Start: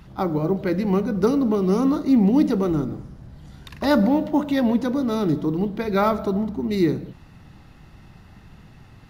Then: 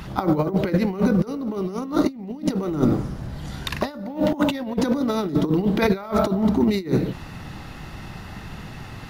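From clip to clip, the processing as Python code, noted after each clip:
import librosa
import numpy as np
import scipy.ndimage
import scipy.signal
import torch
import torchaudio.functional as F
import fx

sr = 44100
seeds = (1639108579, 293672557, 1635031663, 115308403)

y = fx.low_shelf(x, sr, hz=320.0, db=-5.5)
y = fx.over_compress(y, sr, threshold_db=-29.0, ratio=-0.5)
y = F.gain(torch.from_numpy(y), 8.0).numpy()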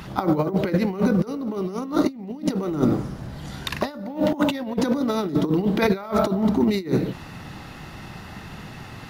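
y = fx.low_shelf(x, sr, hz=64.0, db=-10.0)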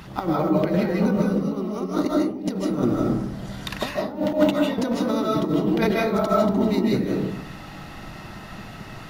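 y = fx.rev_freeverb(x, sr, rt60_s=0.52, hf_ratio=0.35, predelay_ms=115, drr_db=-2.0)
y = F.gain(torch.from_numpy(y), -3.5).numpy()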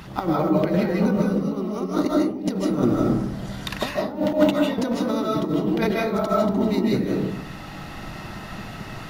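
y = fx.rider(x, sr, range_db=3, speed_s=2.0)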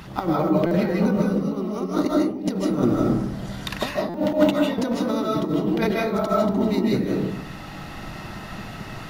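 y = fx.buffer_glitch(x, sr, at_s=(0.66, 4.09), block=256, repeats=8)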